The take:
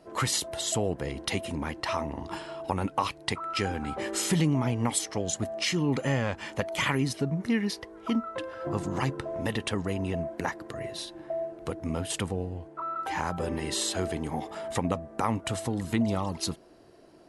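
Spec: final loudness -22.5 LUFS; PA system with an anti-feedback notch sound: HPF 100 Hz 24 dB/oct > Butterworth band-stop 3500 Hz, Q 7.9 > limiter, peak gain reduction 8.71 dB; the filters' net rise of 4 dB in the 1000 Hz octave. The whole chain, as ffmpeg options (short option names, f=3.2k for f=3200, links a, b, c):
-af "highpass=f=100:w=0.5412,highpass=f=100:w=1.3066,asuperstop=centerf=3500:order=8:qfactor=7.9,equalizer=f=1k:t=o:g=5,volume=8.5dB,alimiter=limit=-10dB:level=0:latency=1"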